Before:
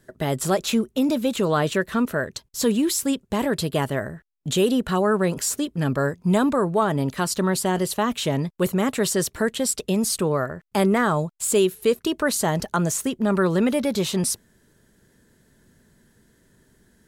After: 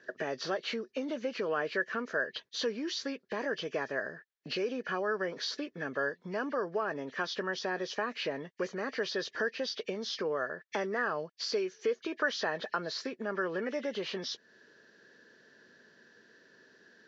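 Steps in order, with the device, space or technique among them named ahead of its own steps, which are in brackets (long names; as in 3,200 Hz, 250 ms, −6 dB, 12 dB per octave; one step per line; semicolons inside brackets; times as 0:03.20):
0:12.21–0:12.73: parametric band 1,900 Hz +4 dB 3 octaves
hearing aid with frequency lowering (hearing-aid frequency compression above 1,700 Hz 1.5 to 1; downward compressor 3 to 1, threshold −34 dBFS, peak gain reduction 14.5 dB; loudspeaker in its box 370–5,300 Hz, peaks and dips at 470 Hz +4 dB, 880 Hz −4 dB, 1,700 Hz +10 dB, 2,600 Hz −3 dB, 5,100 Hz −3 dB)
level +1 dB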